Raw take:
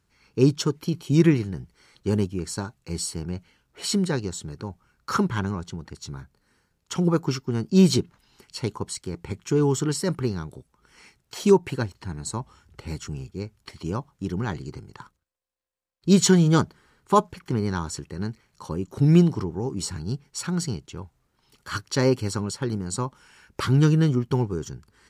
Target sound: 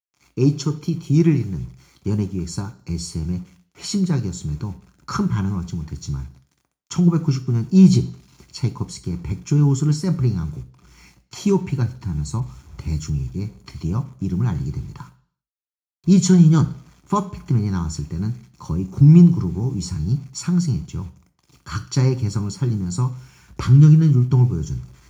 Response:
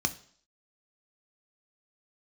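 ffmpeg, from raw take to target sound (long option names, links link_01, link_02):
-filter_complex "[0:a]asubboost=boost=3:cutoff=180,asplit=2[link_01][link_02];[link_02]acompressor=threshold=-29dB:ratio=16,volume=1.5dB[link_03];[link_01][link_03]amix=inputs=2:normalize=0,aeval=exprs='0.75*(cos(1*acos(clip(val(0)/0.75,-1,1)))-cos(1*PI/2))+0.0119*(cos(7*acos(clip(val(0)/0.75,-1,1)))-cos(7*PI/2))':channel_layout=same,acrusher=bits=7:mix=0:aa=0.000001[link_04];[1:a]atrim=start_sample=2205[link_05];[link_04][link_05]afir=irnorm=-1:irlink=0,asettb=1/sr,asplit=3[link_06][link_07][link_08];[link_06]atrim=end=12.404[link_09];[link_07]atrim=start=12.4:end=13.1,asetpts=PTS-STARTPTS,afade=type=in:duration=0.004:curve=qsin,afade=type=out:start_time=0.696:duration=0.004:curve=qsin,adynamicequalizer=threshold=0.0141:dfrequency=3200:dqfactor=0.7:tfrequency=3200:tqfactor=0.7:attack=5:release=100:ratio=0.375:range=2:mode=boostabove:tftype=highshelf[link_10];[link_08]atrim=start=13.096[link_11];[link_09][link_10]acrossfade=duration=0.004:curve1=hsin:curve2=qsin[link_12];[link_12][link_11]acrossfade=duration=0.004:curve1=qsin:curve2=hsin,volume=-11.5dB"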